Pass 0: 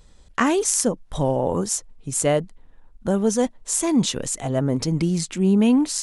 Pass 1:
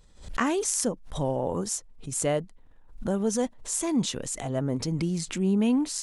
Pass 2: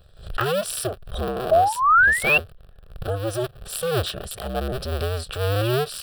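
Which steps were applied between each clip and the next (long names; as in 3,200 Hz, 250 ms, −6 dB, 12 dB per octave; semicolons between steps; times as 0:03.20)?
background raised ahead of every attack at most 110 dB per second; level −6.5 dB
sub-harmonics by changed cycles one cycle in 2, inverted; sound drawn into the spectrogram rise, 0:01.51–0:02.38, 620–2,800 Hz −19 dBFS; phaser with its sweep stopped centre 1,400 Hz, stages 8; level +5.5 dB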